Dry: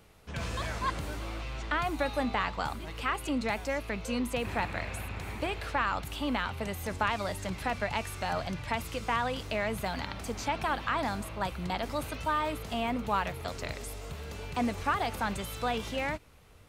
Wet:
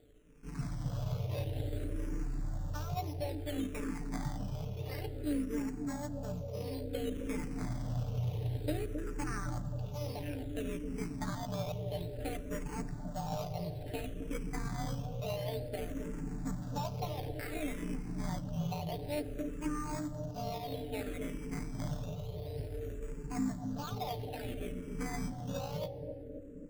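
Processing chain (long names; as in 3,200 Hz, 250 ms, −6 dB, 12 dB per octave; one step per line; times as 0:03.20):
running median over 41 samples
speech leveller within 3 dB 0.5 s
time stretch by overlap-add 1.6×, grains 36 ms
sample-and-hold swept by an LFO 11×, swing 100% 0.29 Hz
bucket-brigade delay 266 ms, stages 1,024, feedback 74%, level −4.5 dB
dense smooth reverb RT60 2.6 s, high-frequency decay 0.55×, DRR 17 dB
frequency shifter mixed with the dry sound −0.57 Hz
level +1 dB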